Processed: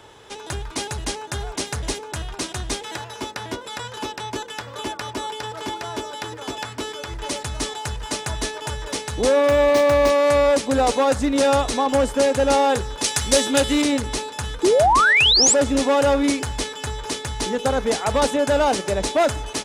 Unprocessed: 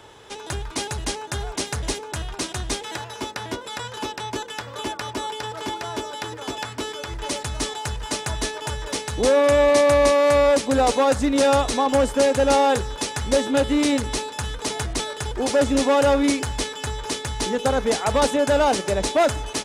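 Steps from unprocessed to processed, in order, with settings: 9.46–10.1 median filter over 5 samples; 13.04–13.82 high shelf 2500 Hz +11.5 dB; 14.63–15.54 painted sound rise 330–8200 Hz -15 dBFS

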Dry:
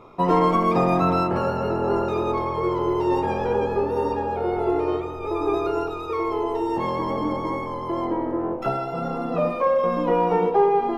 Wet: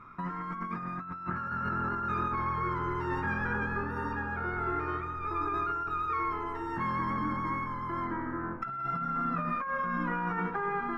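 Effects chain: EQ curve 220 Hz 0 dB, 490 Hz -18 dB, 780 Hz -13 dB, 1500 Hz +14 dB, 3000 Hz -9 dB; negative-ratio compressor -27 dBFS, ratio -1; gain -5.5 dB

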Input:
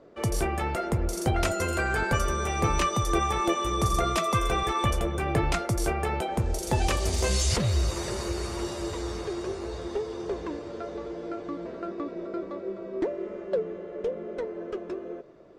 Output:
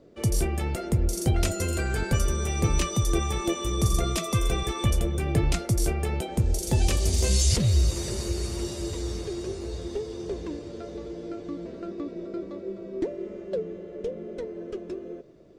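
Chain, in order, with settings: bell 1100 Hz -13.5 dB 2.4 oct; gain +4.5 dB

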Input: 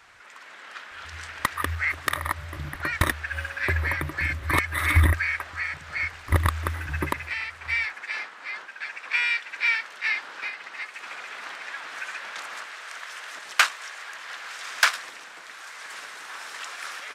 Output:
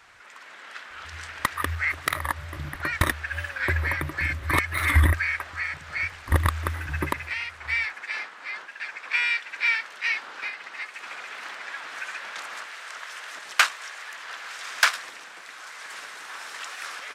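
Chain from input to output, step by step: record warp 45 rpm, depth 100 cents

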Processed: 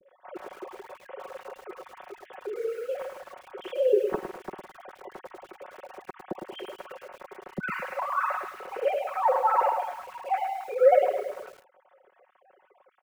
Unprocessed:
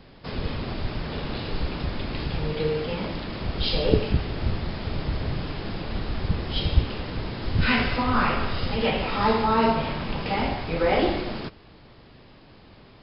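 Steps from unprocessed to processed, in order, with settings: sine-wave speech; LPF 1400 Hz 12 dB/oct; comb 5.4 ms, depth 71%; lo-fi delay 0.106 s, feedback 35%, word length 7-bit, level -7 dB; gain -6 dB

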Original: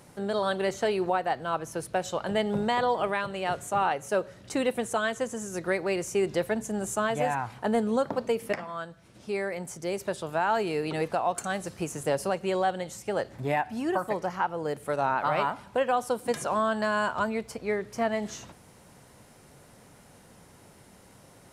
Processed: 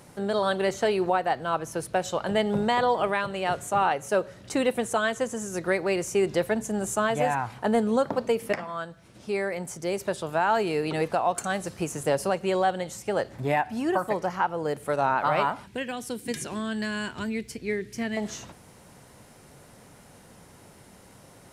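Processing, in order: 15.66–18.17 band shelf 840 Hz -14.5 dB; gain +2.5 dB

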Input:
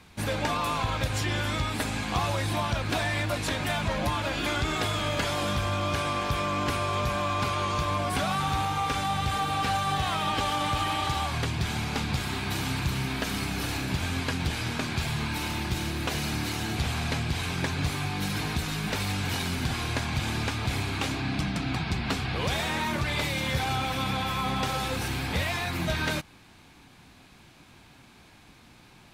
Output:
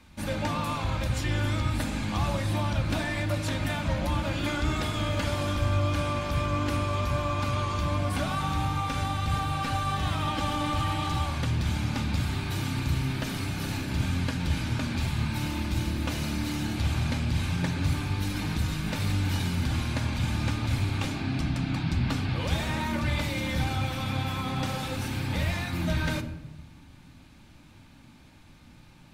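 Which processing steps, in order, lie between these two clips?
on a send: low shelf 350 Hz +12 dB + reverb RT60 0.95 s, pre-delay 3 ms, DRR 5.5 dB; on the sum: gain -4.5 dB

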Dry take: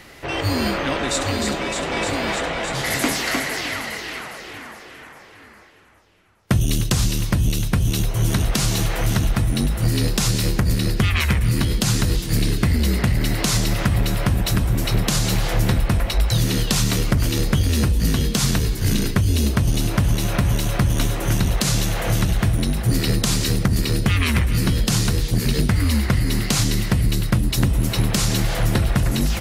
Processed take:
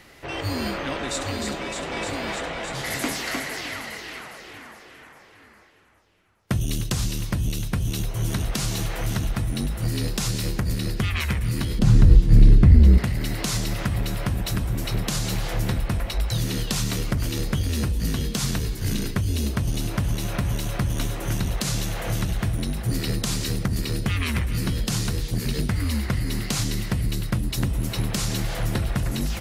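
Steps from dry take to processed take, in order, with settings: 11.79–12.98 tilt -3.5 dB/oct; gain -6 dB

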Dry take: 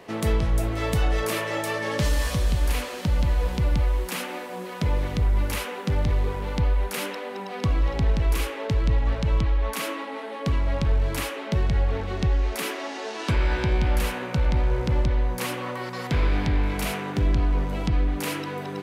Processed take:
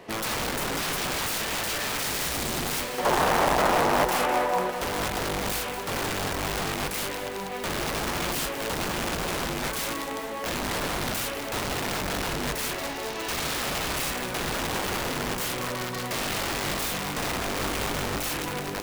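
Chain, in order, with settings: wrapped overs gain 24.5 dB; 2.98–4.7 bell 820 Hz +13 dB 2.1 oct; lo-fi delay 0.202 s, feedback 80%, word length 8-bit, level -12 dB

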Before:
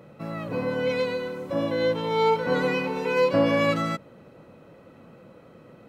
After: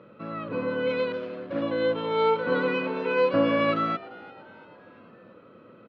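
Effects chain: 1.12–1.62 median filter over 41 samples; speaker cabinet 120–3600 Hz, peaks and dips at 150 Hz -9 dB, 760 Hz -10 dB, 1300 Hz +5 dB, 2000 Hz -5 dB; frequency-shifting echo 0.342 s, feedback 52%, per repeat +110 Hz, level -21 dB

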